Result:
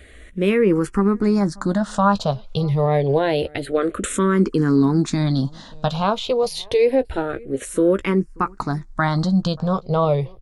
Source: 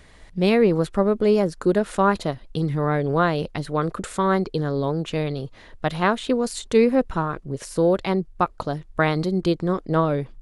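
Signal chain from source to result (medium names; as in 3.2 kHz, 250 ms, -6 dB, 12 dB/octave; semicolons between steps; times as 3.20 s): 4.02–5.87 s: graphic EQ 250/4000/8000 Hz +9/+6/+5 dB; peak limiter -13 dBFS, peak gain reduction 7.5 dB; doubling 15 ms -11.5 dB; echo from a far wall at 100 m, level -25 dB; barber-pole phaser -0.27 Hz; trim +6.5 dB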